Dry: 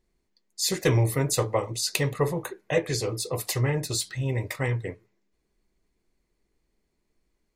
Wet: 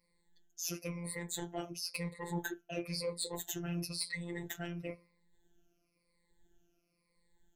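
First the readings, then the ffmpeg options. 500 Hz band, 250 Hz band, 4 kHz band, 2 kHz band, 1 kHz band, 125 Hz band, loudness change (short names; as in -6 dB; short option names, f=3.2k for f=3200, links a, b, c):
-15.0 dB, -9.0 dB, -10.5 dB, -10.5 dB, -13.0 dB, -17.5 dB, -13.0 dB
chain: -af "afftfilt=real='re*pow(10,23/40*sin(2*PI*(0.95*log(max(b,1)*sr/1024/100)/log(2)-(-0.99)*(pts-256)/sr)))':imag='im*pow(10,23/40*sin(2*PI*(0.95*log(max(b,1)*sr/1024/100)/log(2)-(-0.99)*(pts-256)/sr)))':win_size=1024:overlap=0.75,bandreject=f=1.2k:w=10,adynamicequalizer=threshold=0.0224:dfrequency=420:dqfactor=0.9:tfrequency=420:tqfactor=0.9:attack=5:release=100:ratio=0.375:range=3:mode=cutabove:tftype=bell,areverse,acompressor=threshold=-30dB:ratio=12,areverse,asoftclip=type=tanh:threshold=-22dB,afftfilt=real='hypot(re,im)*cos(PI*b)':imag='0':win_size=1024:overlap=0.75,volume=-1dB"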